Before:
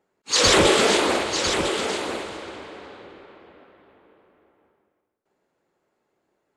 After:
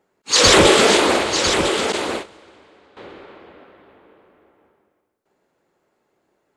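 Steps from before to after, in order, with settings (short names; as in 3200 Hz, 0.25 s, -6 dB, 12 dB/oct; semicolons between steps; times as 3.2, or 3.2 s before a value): 1.92–2.97 gate -29 dBFS, range -16 dB; gain +5 dB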